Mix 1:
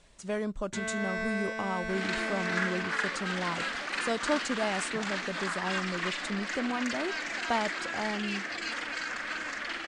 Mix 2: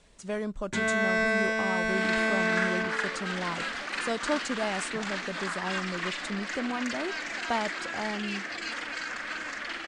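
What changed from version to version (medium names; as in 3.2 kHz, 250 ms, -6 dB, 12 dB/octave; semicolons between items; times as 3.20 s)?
first sound +8.0 dB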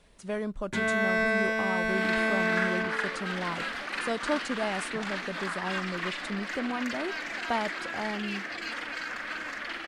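master: remove resonant low-pass 7.6 kHz, resonance Q 2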